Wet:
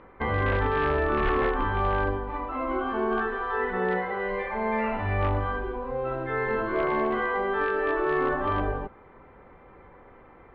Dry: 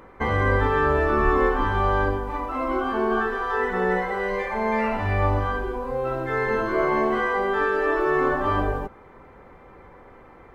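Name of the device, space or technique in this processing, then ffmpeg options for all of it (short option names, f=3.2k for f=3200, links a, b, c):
synthesiser wavefolder: -filter_complex "[0:a]asettb=1/sr,asplit=3[a][b][c];[a]atrim=end=3.774[d];[b]atrim=start=3.77:end=4.24,asetpts=PTS-STARTPTS,afade=t=in:d=0.004:c=qsin,afade=t=out:st=0.466:d=0.004:c=qsin,highpass=57[e];[c]atrim=start=4.236[f];[d][e]acrossfade=d=0.004:c1=hsin:c2=qsin[g];[g][f]acrossfade=d=0.004:c1=qsin:c2=hsin,aeval=exprs='0.2*(abs(mod(val(0)/0.2+3,4)-2)-1)':c=same,lowpass=f=3.5k:w=0.5412,lowpass=f=3.5k:w=1.3066,volume=-3.5dB"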